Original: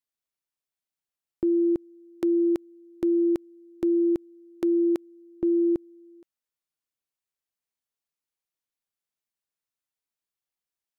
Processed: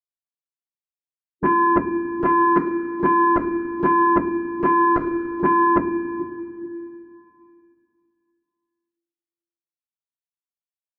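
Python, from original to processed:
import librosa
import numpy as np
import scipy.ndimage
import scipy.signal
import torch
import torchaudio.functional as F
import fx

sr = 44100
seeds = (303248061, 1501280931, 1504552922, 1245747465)

y = fx.bin_expand(x, sr, power=1.5)
y = fx.highpass(y, sr, hz=190.0, slope=6)
y = fx.fixed_phaser(y, sr, hz=300.0, stages=8)
y = fx.echo_feedback(y, sr, ms=436, feedback_pct=30, wet_db=-22.0)
y = fx.fold_sine(y, sr, drive_db=10, ceiling_db=-21.0)
y = scipy.signal.sosfilt(scipy.signal.butter(2, 1100.0, 'lowpass', fs=sr, output='sos'), y)
y = fx.peak_eq(y, sr, hz=750.0, db=-10.5, octaves=1.1)
y = fx.rev_double_slope(y, sr, seeds[0], early_s=0.28, late_s=2.7, knee_db=-18, drr_db=-9.5)
y = fx.transformer_sat(y, sr, knee_hz=440.0)
y = y * 10.0 ** (5.5 / 20.0)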